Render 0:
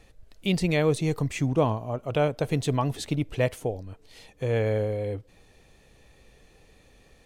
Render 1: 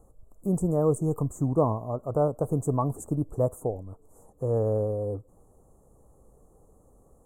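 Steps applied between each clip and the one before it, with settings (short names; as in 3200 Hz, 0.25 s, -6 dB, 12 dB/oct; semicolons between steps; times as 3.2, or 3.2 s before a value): Chebyshev band-stop 1200–7300 Hz, order 4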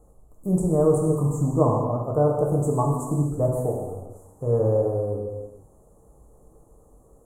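non-linear reverb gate 0.48 s falling, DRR -2 dB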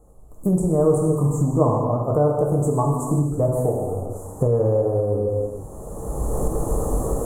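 recorder AGC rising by 20 dB/s; gain +1.5 dB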